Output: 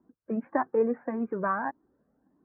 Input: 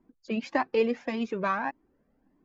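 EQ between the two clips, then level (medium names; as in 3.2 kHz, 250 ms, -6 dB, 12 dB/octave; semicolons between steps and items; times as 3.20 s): high-pass 71 Hz; steep low-pass 1.7 kHz 48 dB/octave; 0.0 dB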